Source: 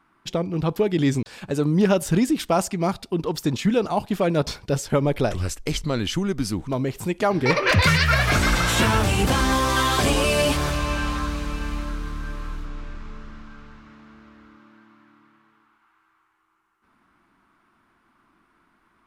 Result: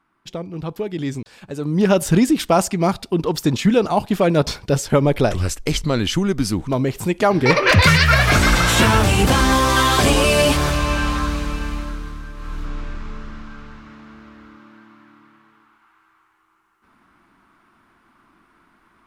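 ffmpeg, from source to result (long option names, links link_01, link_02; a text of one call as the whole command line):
ffmpeg -i in.wav -af "volume=14.5dB,afade=type=in:start_time=1.6:duration=0.4:silence=0.334965,afade=type=out:start_time=11.34:duration=1:silence=0.375837,afade=type=in:start_time=12.34:duration=0.35:silence=0.334965" out.wav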